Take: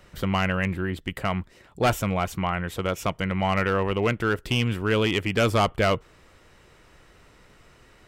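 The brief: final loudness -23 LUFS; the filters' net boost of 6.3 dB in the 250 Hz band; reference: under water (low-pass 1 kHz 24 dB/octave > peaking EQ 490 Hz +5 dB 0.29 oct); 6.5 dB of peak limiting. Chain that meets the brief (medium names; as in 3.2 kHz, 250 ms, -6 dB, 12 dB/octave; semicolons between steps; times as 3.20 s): peaking EQ 250 Hz +8.5 dB; peak limiter -15 dBFS; low-pass 1 kHz 24 dB/octave; peaking EQ 490 Hz +5 dB 0.29 oct; trim +2.5 dB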